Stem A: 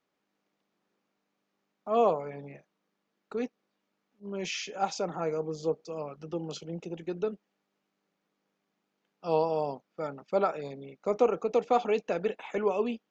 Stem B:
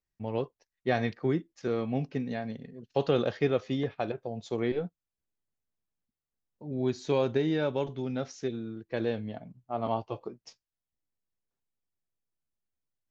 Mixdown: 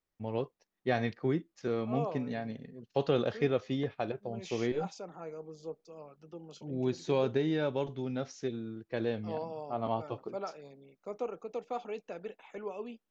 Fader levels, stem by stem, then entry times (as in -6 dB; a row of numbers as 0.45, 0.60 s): -12.0, -2.5 dB; 0.00, 0.00 s